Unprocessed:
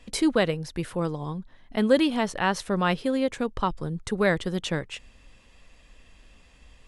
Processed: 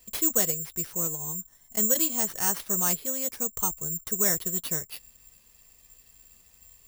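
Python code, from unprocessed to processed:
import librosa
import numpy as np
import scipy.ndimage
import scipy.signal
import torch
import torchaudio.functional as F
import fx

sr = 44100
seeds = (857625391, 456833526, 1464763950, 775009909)

y = fx.notch_comb(x, sr, f0_hz=280.0)
y = (np.kron(y[::6], np.eye(6)[0]) * 6)[:len(y)]
y = y * librosa.db_to_amplitude(-8.5)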